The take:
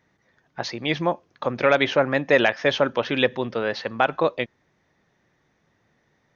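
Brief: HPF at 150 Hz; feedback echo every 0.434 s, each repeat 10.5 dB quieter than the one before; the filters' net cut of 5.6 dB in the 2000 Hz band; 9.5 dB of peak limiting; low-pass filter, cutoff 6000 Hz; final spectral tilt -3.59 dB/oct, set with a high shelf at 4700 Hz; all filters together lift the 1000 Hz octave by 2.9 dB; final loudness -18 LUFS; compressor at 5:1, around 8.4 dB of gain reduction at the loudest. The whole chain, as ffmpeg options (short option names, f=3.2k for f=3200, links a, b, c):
-af "highpass=150,lowpass=6k,equalizer=f=1k:t=o:g=6.5,equalizer=f=2k:t=o:g=-8,highshelf=f=4.7k:g=-8.5,acompressor=threshold=-22dB:ratio=5,alimiter=limit=-18.5dB:level=0:latency=1,aecho=1:1:434|868|1302:0.299|0.0896|0.0269,volume=13.5dB"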